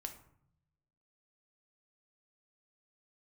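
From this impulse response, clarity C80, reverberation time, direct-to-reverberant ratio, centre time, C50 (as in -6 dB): 14.0 dB, 0.70 s, 5.0 dB, 12 ms, 10.0 dB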